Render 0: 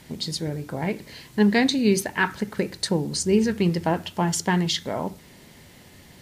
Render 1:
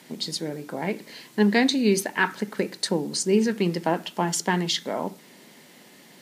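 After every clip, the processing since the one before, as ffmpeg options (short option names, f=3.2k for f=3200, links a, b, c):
-af "highpass=f=190:w=0.5412,highpass=f=190:w=1.3066"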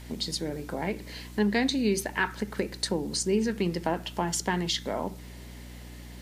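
-af "acompressor=threshold=-31dB:ratio=1.5,aeval=exprs='val(0)+0.00708*(sin(2*PI*60*n/s)+sin(2*PI*2*60*n/s)/2+sin(2*PI*3*60*n/s)/3+sin(2*PI*4*60*n/s)/4+sin(2*PI*5*60*n/s)/5)':c=same"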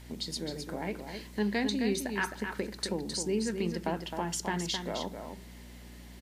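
-af "aecho=1:1:262:0.447,volume=-5dB"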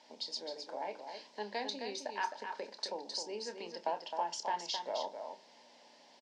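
-filter_complex "[0:a]highpass=f=340:w=0.5412,highpass=f=340:w=1.3066,equalizer=f=360:t=q:w=4:g=-9,equalizer=f=600:t=q:w=4:g=7,equalizer=f=890:t=q:w=4:g=10,equalizer=f=1.3k:t=q:w=4:g=-7,equalizer=f=2k:t=q:w=4:g=-5,equalizer=f=5.1k:t=q:w=4:g=7,lowpass=f=6.2k:w=0.5412,lowpass=f=6.2k:w=1.3066,asplit=2[a][b];[b]adelay=29,volume=-11dB[c];[a][c]amix=inputs=2:normalize=0,volume=-6dB"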